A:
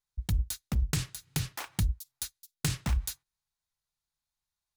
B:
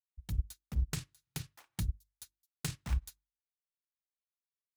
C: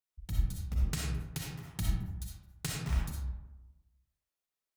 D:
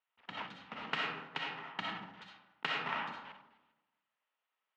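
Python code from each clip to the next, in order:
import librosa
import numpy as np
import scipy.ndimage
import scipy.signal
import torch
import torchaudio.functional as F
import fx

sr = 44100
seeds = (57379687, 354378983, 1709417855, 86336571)

y1 = fx.hum_notches(x, sr, base_hz=50, count=7)
y1 = fx.upward_expand(y1, sr, threshold_db=-40.0, expansion=2.5)
y1 = F.gain(torch.from_numpy(y1), -1.0).numpy()
y2 = fx.rev_freeverb(y1, sr, rt60_s=1.1, hf_ratio=0.4, predelay_ms=20, drr_db=-3.5)
y3 = fx.block_float(y2, sr, bits=5)
y3 = fx.cabinet(y3, sr, low_hz=280.0, low_slope=24, high_hz=3200.0, hz=(350.0, 920.0, 1300.0, 1900.0, 2900.0), db=(-10, 8, 6, 4, 6))
y3 = F.gain(torch.from_numpy(y3), 5.0).numpy()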